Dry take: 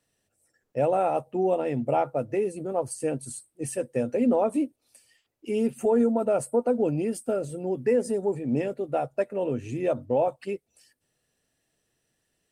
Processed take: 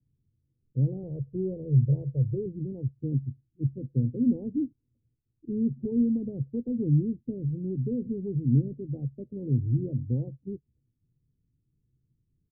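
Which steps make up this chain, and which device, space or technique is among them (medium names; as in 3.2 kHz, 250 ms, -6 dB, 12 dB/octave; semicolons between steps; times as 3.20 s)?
1.03–2.46 s: comb 1.9 ms, depth 90%; the neighbour's flat through the wall (low-pass 250 Hz 24 dB/octave; peaking EQ 130 Hz +6 dB 0.59 oct); bass shelf 440 Hz +9 dB; comb 2.3 ms, depth 42%; trim -1 dB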